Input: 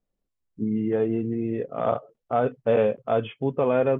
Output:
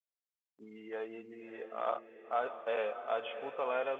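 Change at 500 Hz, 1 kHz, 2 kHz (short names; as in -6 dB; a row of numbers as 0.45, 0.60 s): -13.0, -7.5, -4.5 dB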